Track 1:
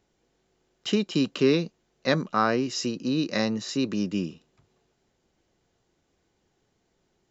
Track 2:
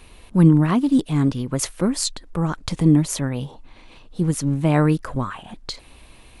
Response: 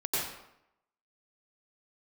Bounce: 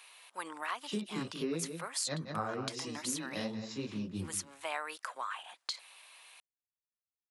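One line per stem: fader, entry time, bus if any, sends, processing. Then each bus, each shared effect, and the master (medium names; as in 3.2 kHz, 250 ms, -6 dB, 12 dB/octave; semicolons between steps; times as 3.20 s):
-7.0 dB, 0.00 s, no send, echo send -12 dB, fifteen-band graphic EQ 100 Hz +10 dB, 630 Hz +4 dB, 6.3 kHz -4 dB; chorus voices 2, 1.3 Hz, delay 21 ms, depth 3 ms; three bands expanded up and down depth 100%
-3.0 dB, 0.00 s, no send, no echo send, Bessel high-pass 1.1 kHz, order 4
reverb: none
echo: delay 178 ms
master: compression 6:1, threshold -33 dBFS, peak gain reduction 12 dB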